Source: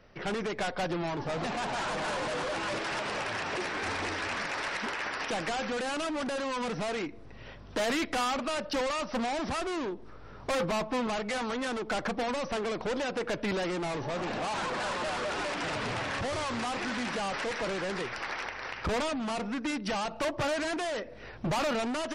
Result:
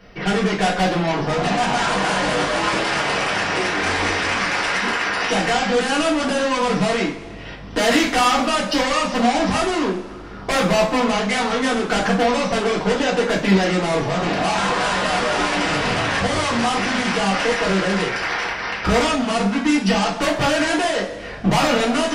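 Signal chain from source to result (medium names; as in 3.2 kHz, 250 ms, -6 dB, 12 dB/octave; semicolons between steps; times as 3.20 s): two-slope reverb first 0.3 s, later 1.6 s, from -17 dB, DRR -4 dB; trim +7.5 dB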